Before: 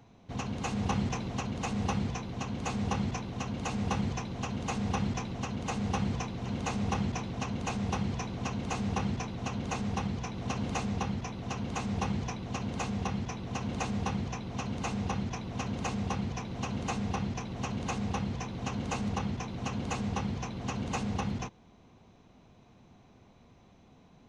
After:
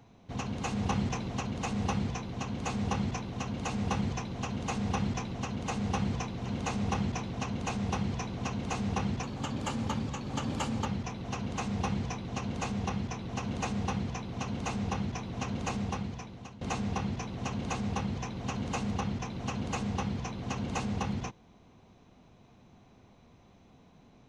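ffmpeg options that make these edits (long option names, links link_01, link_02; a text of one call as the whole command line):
ffmpeg -i in.wav -filter_complex "[0:a]asplit=4[link_01][link_02][link_03][link_04];[link_01]atrim=end=9.234[link_05];[link_02]atrim=start=9.23:end=11.04,asetpts=PTS-STARTPTS,asetrate=48951,aresample=44100[link_06];[link_03]atrim=start=11.036:end=16.79,asetpts=PTS-STARTPTS,afade=type=out:start_time=4.924:duration=0.83:silence=0.125893[link_07];[link_04]atrim=start=16.79,asetpts=PTS-STARTPTS,afade=type=in:duration=0.004:curve=hsin:silence=0.125893[link_08];[link_05][link_06]acrossfade=duration=0.004:curve1=hsin:curve2=hsin[link_09];[link_07][link_08]concat=n=2:v=0:a=1[link_10];[link_09][link_10]acrossfade=duration=0.004:curve1=hsin:curve2=hsin" out.wav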